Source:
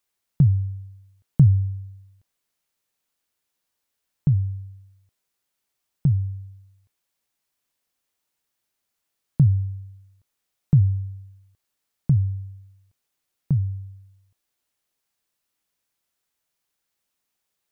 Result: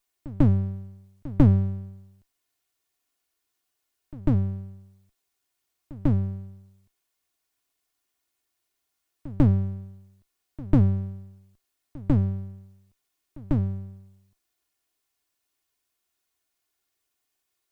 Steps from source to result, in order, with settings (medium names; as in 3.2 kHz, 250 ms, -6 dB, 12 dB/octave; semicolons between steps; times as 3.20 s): comb filter that takes the minimum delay 2.8 ms; pre-echo 146 ms -19.5 dB; trim +1.5 dB